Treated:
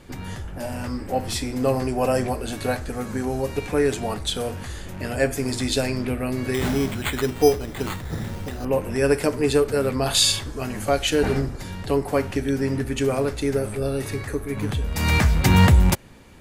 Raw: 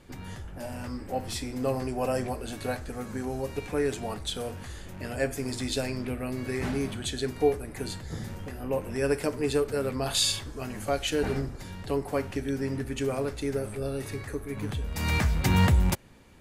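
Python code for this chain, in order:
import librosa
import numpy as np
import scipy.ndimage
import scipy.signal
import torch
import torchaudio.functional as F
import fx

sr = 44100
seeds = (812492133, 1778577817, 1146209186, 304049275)

y = fx.resample_bad(x, sr, factor=8, down='none', up='hold', at=(6.54, 8.65))
y = y * librosa.db_to_amplitude(7.0)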